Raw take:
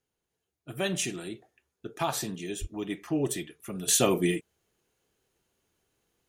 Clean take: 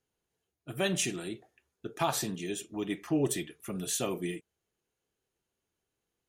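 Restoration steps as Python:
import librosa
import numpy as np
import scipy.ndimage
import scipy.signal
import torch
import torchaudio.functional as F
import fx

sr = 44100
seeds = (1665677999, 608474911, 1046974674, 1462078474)

y = fx.fix_deplosive(x, sr, at_s=(2.6,))
y = fx.fix_level(y, sr, at_s=3.88, step_db=-9.0)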